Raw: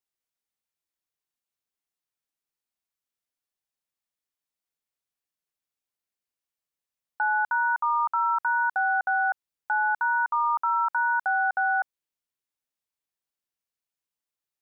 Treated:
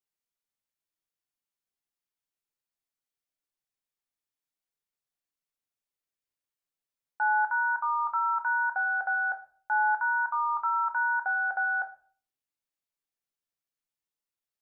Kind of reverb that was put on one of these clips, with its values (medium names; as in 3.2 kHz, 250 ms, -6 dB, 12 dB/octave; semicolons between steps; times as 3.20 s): simulated room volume 39 m³, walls mixed, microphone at 0.32 m; trim -4.5 dB